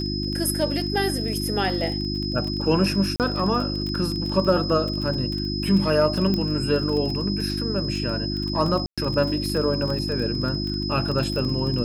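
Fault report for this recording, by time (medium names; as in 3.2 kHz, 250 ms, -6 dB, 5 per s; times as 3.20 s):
crackle 26 per s -27 dBFS
hum 50 Hz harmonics 7 -28 dBFS
whine 5.1 kHz -30 dBFS
3.16–3.20 s: dropout 38 ms
6.34 s: pop -13 dBFS
8.86–8.98 s: dropout 116 ms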